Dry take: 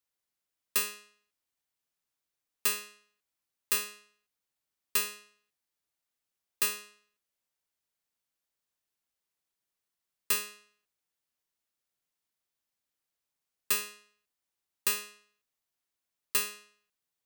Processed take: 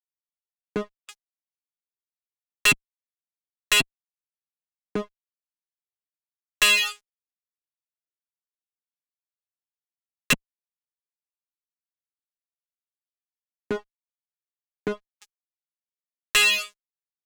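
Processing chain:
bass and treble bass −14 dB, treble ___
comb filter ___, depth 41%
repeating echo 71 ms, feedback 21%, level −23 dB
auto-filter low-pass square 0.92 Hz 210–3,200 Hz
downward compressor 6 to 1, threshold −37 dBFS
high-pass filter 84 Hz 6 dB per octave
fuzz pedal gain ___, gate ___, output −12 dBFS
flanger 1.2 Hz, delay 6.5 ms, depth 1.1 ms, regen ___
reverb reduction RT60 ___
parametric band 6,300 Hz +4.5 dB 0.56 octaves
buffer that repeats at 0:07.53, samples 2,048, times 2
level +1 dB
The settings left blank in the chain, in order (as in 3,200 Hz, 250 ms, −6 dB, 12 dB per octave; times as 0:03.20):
−3 dB, 6.3 ms, 49 dB, −58 dBFS, −5%, 0.83 s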